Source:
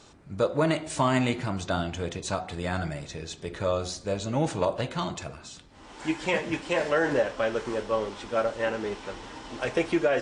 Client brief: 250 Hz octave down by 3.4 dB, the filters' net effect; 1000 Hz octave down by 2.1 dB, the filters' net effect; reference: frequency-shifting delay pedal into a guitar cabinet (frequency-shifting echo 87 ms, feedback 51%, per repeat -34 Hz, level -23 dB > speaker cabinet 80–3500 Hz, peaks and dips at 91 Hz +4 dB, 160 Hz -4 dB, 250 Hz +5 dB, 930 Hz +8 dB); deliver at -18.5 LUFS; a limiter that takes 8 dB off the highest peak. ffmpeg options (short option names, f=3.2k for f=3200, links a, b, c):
-filter_complex "[0:a]equalizer=f=250:t=o:g=-6.5,equalizer=f=1k:t=o:g=-7.5,alimiter=limit=-23dB:level=0:latency=1,asplit=4[a][b][c][d];[b]adelay=87,afreqshift=-34,volume=-23dB[e];[c]adelay=174,afreqshift=-68,volume=-28.8dB[f];[d]adelay=261,afreqshift=-102,volume=-34.7dB[g];[a][e][f][g]amix=inputs=4:normalize=0,highpass=80,equalizer=f=91:t=q:w=4:g=4,equalizer=f=160:t=q:w=4:g=-4,equalizer=f=250:t=q:w=4:g=5,equalizer=f=930:t=q:w=4:g=8,lowpass=f=3.5k:w=0.5412,lowpass=f=3.5k:w=1.3066,volume=16dB"